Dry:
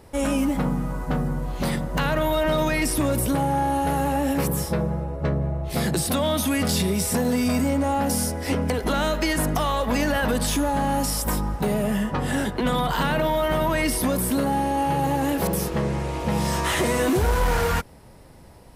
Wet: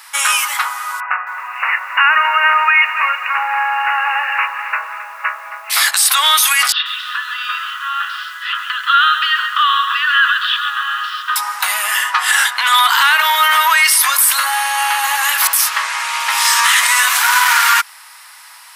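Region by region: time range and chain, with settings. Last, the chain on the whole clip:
1.00–5.70 s: brick-wall FIR low-pass 2.9 kHz + band-stop 420 Hz, Q 7.1 + bit-crushed delay 268 ms, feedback 55%, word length 9-bit, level -13.5 dB
6.72–11.36 s: elliptic band-pass 1.2–3.3 kHz, stop band 60 dB + static phaser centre 2.2 kHz, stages 6 + bit-crushed delay 136 ms, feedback 35%, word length 9-bit, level -8 dB
whole clip: steep high-pass 1.1 kHz 36 dB/octave; loudness maximiser +21 dB; trim -1 dB

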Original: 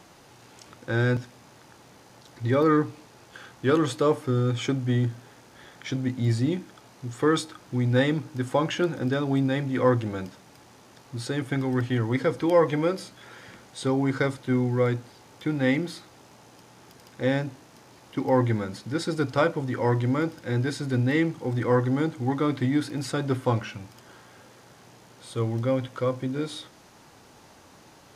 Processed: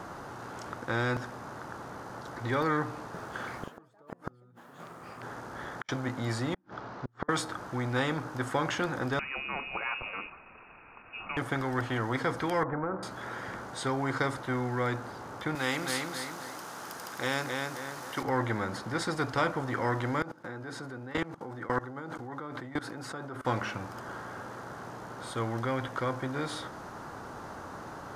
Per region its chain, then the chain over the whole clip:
2.88–5.89 s: compression 2:1, threshold -32 dBFS + inverted gate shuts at -28 dBFS, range -40 dB + ever faster or slower copies 261 ms, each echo +6 st, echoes 2, each echo -6 dB
6.54–7.29 s: low-pass 5.2 kHz 24 dB/octave + inverted gate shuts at -26 dBFS, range -42 dB
9.19–11.37 s: peaking EQ 850 Hz -15 dB 1.6 oct + frequency inversion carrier 2.7 kHz
12.63–13.03 s: inverse Chebyshev low-pass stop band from 7.1 kHz, stop band 80 dB + compression, threshold -24 dBFS
15.55–18.23 s: tilt EQ +3.5 dB/octave + feedback delay 264 ms, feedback 26%, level -6 dB
20.22–23.45 s: high-pass 160 Hz + hard clipper -11.5 dBFS + level held to a coarse grid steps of 22 dB
whole clip: FFT filter 530 Hz 0 dB, 1.4 kHz +5 dB, 2.4 kHz -11 dB; spectrum-flattening compressor 2:1; trim -7 dB

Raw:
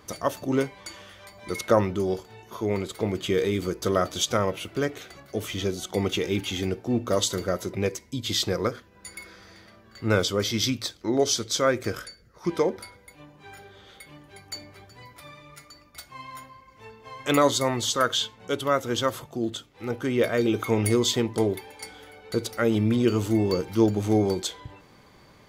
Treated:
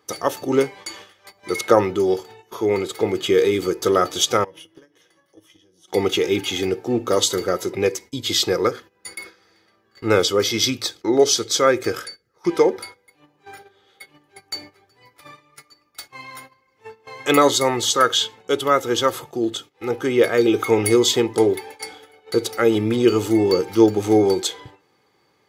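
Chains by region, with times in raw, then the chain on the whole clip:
4.44–5.88 s: rippled EQ curve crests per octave 1.2, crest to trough 10 dB + compression 16:1, threshold -36 dBFS + feedback comb 160 Hz, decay 0.21 s, mix 70%
whole clip: high-pass 160 Hz 12 dB/octave; gate -45 dBFS, range -14 dB; comb 2.4 ms, depth 47%; trim +5.5 dB

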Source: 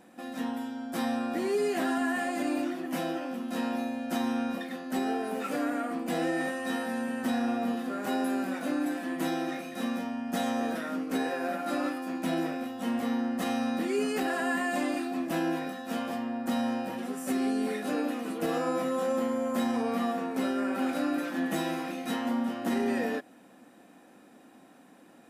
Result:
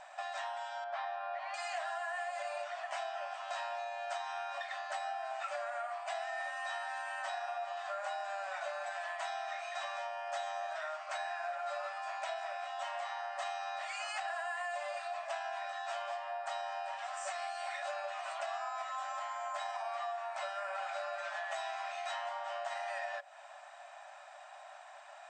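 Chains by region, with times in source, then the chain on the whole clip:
0.84–1.54 s: steep high-pass 160 Hz + distance through air 300 m
whole clip: FFT band-pass 570–8700 Hz; tilt EQ -1.5 dB/octave; compression 6:1, threshold -46 dBFS; trim +8.5 dB

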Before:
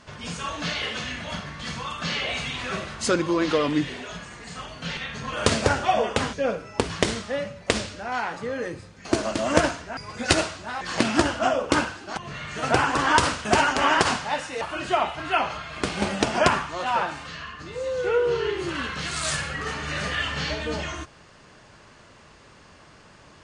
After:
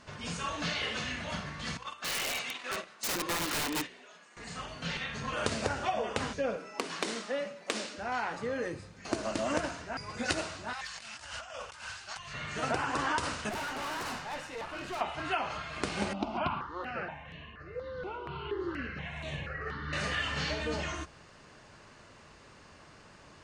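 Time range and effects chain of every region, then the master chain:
1.77–4.37 s: gate -32 dBFS, range -12 dB + Bessel high-pass 350 Hz, order 4 + integer overflow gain 22 dB
6.56–7.98 s: high-pass 220 Hz 24 dB/octave + transformer saturation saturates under 2.4 kHz
10.73–12.34 s: amplifier tone stack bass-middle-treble 10-0-10 + compressor with a negative ratio -40 dBFS + hard clipper -26 dBFS
13.49–15.01 s: treble shelf 5 kHz -6 dB + valve stage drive 31 dB, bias 0.65
16.13–19.93 s: distance through air 310 m + stepped phaser 4.2 Hz 470–4900 Hz
whole clip: band-stop 3.3 kHz, Q 25; de-hum 60.24 Hz, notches 3; compression, threshold -24 dBFS; trim -4 dB

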